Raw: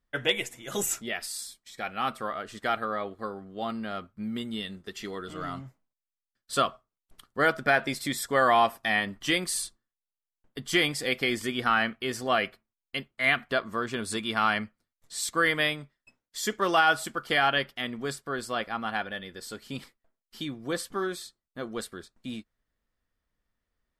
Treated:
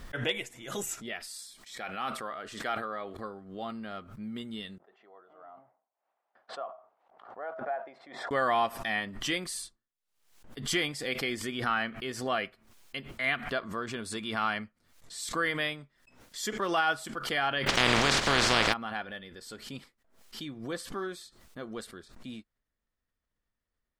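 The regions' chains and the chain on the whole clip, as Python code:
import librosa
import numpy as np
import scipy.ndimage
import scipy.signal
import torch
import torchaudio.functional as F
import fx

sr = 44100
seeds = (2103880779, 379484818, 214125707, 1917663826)

y = fx.chain(x, sr, fx.low_shelf(hz=180.0, db=-8.0),
    fx.sustainer(db_per_s=74.0), at=(1.36, 3.17))
y = fx.chain(y, sr, fx.ladder_bandpass(hz=810.0, resonance_pct=60),
    fx.tilt_eq(slope=-2.5),
    fx.sustainer(db_per_s=120.0), at=(4.78, 8.31))
y = fx.spec_flatten(y, sr, power=0.22, at=(17.66, 18.72), fade=0.02)
y = fx.air_absorb(y, sr, metres=120.0, at=(17.66, 18.72), fade=0.02)
y = fx.env_flatten(y, sr, amount_pct=100, at=(17.66, 18.72), fade=0.02)
y = fx.high_shelf(y, sr, hz=12000.0, db=-7.5)
y = fx.pre_swell(y, sr, db_per_s=85.0)
y = F.gain(torch.from_numpy(y), -5.5).numpy()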